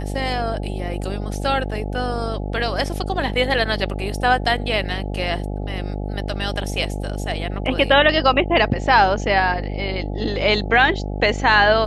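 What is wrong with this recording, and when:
buzz 50 Hz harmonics 17 -26 dBFS

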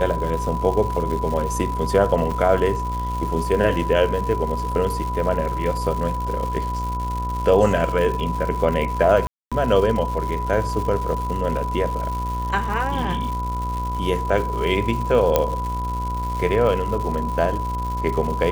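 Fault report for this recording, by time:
buzz 60 Hz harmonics 24 -27 dBFS
crackle 250 per s -28 dBFS
whine 990 Hz -26 dBFS
2.31 s: dropout 5 ms
9.27–9.52 s: dropout 246 ms
15.36 s: pop -3 dBFS

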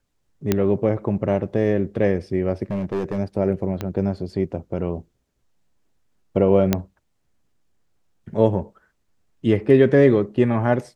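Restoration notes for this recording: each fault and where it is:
0.52 s: pop -5 dBFS
2.71–3.19 s: clipped -20 dBFS
3.81 s: pop -13 dBFS
6.73 s: pop -4 dBFS

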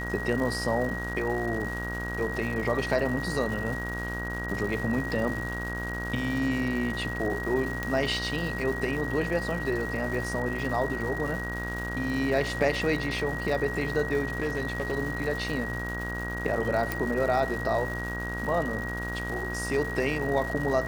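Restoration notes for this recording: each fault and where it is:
buzz 60 Hz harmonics 28 -35 dBFS
crackle 390 per s -35 dBFS
whine 1.9 kHz -34 dBFS
7.83 s: pop -16 dBFS
14.38–14.94 s: clipped -23.5 dBFS
16.92 s: pop

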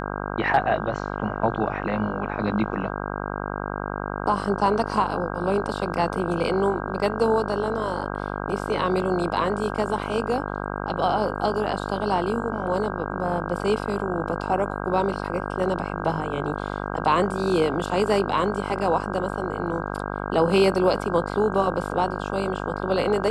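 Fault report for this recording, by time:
buzz 50 Hz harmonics 32 -30 dBFS

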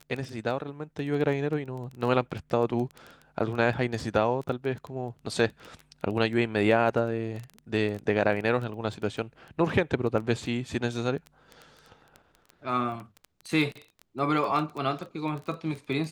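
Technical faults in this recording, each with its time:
crackle 11 per s -32 dBFS

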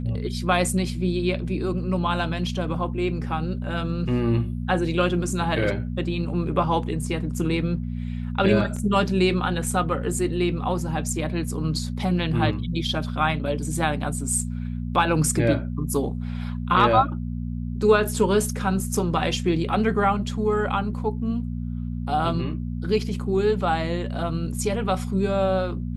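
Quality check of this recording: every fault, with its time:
hum 60 Hz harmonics 4 -29 dBFS
8.76 s: dropout 4.4 ms

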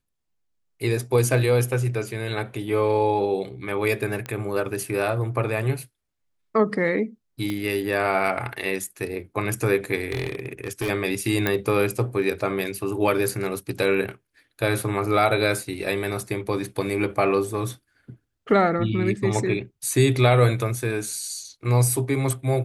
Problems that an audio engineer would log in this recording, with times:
4.26 s: pop -17 dBFS
7.50 s: pop -16 dBFS
10.10–10.90 s: clipped -22 dBFS
11.47 s: pop -8 dBFS

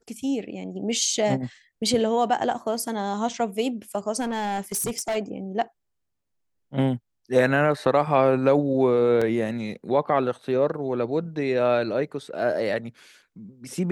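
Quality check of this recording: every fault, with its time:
4.20–5.17 s: clipped -23 dBFS
9.21 s: dropout 4.8 ms

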